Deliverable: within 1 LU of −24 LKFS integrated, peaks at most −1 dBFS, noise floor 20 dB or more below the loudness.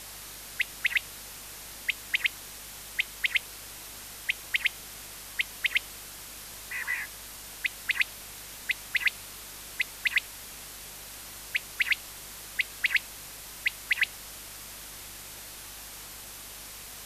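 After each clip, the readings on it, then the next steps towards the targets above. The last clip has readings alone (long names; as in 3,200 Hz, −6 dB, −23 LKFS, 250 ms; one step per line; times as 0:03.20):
mains hum 50 Hz; hum harmonics up to 250 Hz; level of the hum −54 dBFS; background noise floor −44 dBFS; target noise floor −52 dBFS; integrated loudness −32.0 LKFS; sample peak −11.5 dBFS; target loudness −24.0 LKFS
→ hum removal 50 Hz, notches 5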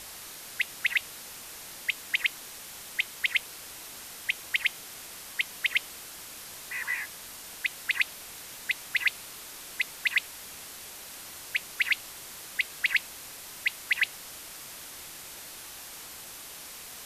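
mains hum none found; background noise floor −44 dBFS; target noise floor −52 dBFS
→ noise reduction from a noise print 8 dB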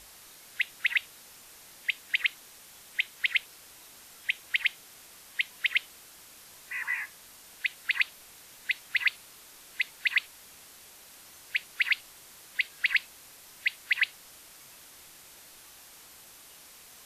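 background noise floor −52 dBFS; integrated loudness −30.0 LKFS; sample peak −11.5 dBFS; target loudness −24.0 LKFS
→ level +6 dB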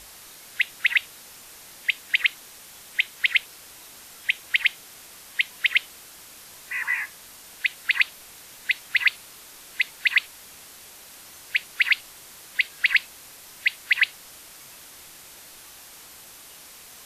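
integrated loudness −24.0 LKFS; sample peak −5.5 dBFS; background noise floor −46 dBFS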